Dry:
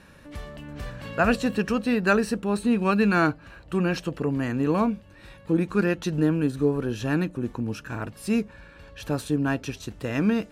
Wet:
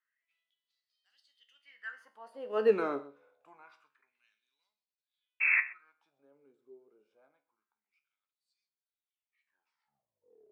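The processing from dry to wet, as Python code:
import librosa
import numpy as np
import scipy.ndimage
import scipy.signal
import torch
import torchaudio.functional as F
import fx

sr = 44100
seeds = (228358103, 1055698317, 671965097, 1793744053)

p1 = fx.tape_stop_end(x, sr, length_s=1.87)
p2 = fx.doppler_pass(p1, sr, speed_mps=39, closest_m=3.3, pass_at_s=2.71)
p3 = fx.high_shelf(p2, sr, hz=3300.0, db=-10.0)
p4 = fx.spec_paint(p3, sr, seeds[0], shape='noise', start_s=5.4, length_s=0.21, low_hz=300.0, high_hz=2700.0, level_db=-26.0)
p5 = fx.filter_lfo_highpass(p4, sr, shape='sine', hz=0.26, low_hz=410.0, high_hz=4600.0, q=5.1)
p6 = fx.comb_fb(p5, sr, f0_hz=71.0, decay_s=0.35, harmonics='all', damping=0.0, mix_pct=70)
p7 = p6 + fx.echo_single(p6, sr, ms=127, db=-18.5, dry=0)
y = p7 * librosa.db_to_amplitude(-2.0)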